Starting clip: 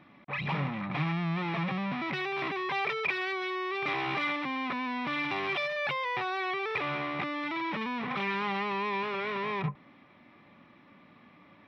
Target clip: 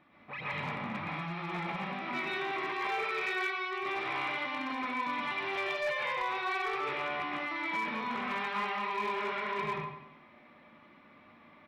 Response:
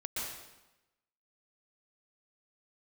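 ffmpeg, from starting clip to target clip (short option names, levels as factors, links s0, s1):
-filter_complex "[0:a]alimiter=level_in=1.19:limit=0.0631:level=0:latency=1:release=36,volume=0.841,highshelf=f=2400:g=-5,aecho=1:1:95|190|285|380|475:0.376|0.169|0.0761|0.0342|0.0154[s0];[1:a]atrim=start_sample=2205,afade=t=out:st=0.28:d=0.01,atrim=end_sample=12789[s1];[s0][s1]afir=irnorm=-1:irlink=0,volume=18.8,asoftclip=hard,volume=0.0531,equalizer=f=130:t=o:w=2.8:g=-7.5"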